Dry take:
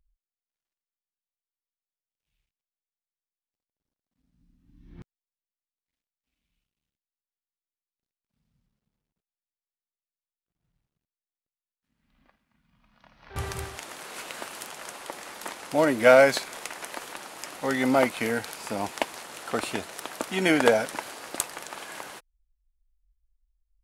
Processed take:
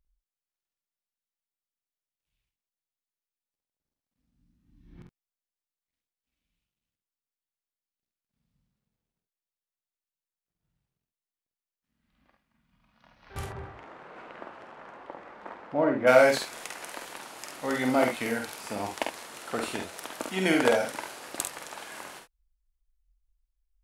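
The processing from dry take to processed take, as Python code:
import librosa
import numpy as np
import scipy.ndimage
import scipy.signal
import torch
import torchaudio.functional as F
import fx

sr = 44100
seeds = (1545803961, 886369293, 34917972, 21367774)

y = fx.lowpass(x, sr, hz=1400.0, slope=12, at=(13.44, 16.06), fade=0.02)
y = fx.room_early_taps(y, sr, ms=(48, 70), db=(-4.5, -9.0))
y = y * librosa.db_to_amplitude(-4.0)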